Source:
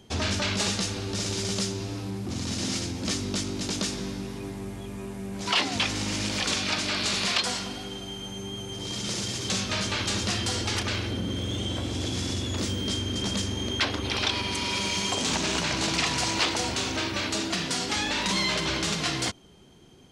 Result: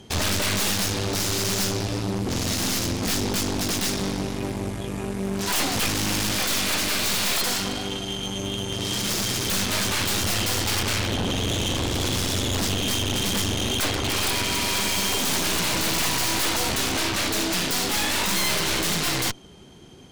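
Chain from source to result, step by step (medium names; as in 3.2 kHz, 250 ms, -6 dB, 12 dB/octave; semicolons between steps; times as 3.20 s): Chebyshev shaper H 8 -15 dB, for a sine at -13 dBFS; wavefolder -24 dBFS; trim +6.5 dB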